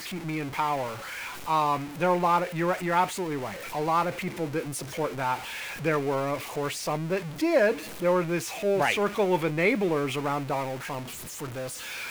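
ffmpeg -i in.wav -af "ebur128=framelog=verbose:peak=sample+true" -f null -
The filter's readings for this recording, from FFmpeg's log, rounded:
Integrated loudness:
  I:         -27.8 LUFS
  Threshold: -37.8 LUFS
Loudness range:
  LRA:         3.9 LU
  Threshold: -47.4 LUFS
  LRA low:   -29.4 LUFS
  LRA high:  -25.6 LUFS
Sample peak:
  Peak:      -10.1 dBFS
True peak:
  Peak:      -10.0 dBFS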